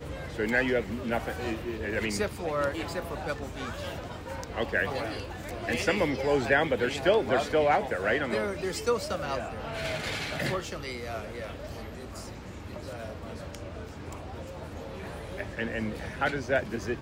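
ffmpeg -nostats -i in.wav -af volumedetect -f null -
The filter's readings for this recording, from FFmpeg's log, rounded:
mean_volume: -30.9 dB
max_volume: -11.0 dB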